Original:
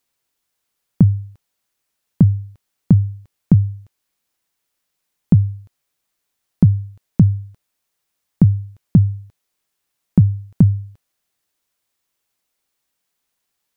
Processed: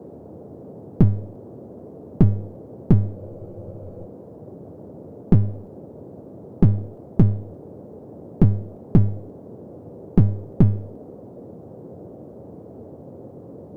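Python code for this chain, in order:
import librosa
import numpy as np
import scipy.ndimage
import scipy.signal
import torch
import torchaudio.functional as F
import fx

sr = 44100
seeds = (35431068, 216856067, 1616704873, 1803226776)

y = np.where(x < 0.0, 10.0 ** (-12.0 / 20.0) * x, x)
y = fx.dmg_noise_band(y, sr, seeds[0], low_hz=84.0, high_hz=550.0, level_db=-40.0)
y = fx.spec_freeze(y, sr, seeds[1], at_s=3.18, hold_s=0.88)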